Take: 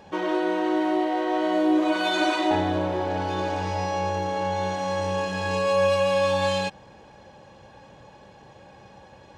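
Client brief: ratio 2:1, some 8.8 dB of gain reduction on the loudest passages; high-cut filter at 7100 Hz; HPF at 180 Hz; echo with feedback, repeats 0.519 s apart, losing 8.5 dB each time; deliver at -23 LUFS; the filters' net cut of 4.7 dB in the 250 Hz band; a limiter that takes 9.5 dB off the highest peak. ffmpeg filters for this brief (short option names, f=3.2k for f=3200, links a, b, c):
-af "highpass=180,lowpass=7.1k,equalizer=f=250:t=o:g=-6,acompressor=threshold=-36dB:ratio=2,alimiter=level_in=7dB:limit=-24dB:level=0:latency=1,volume=-7dB,aecho=1:1:519|1038|1557|2076:0.376|0.143|0.0543|0.0206,volume=15.5dB"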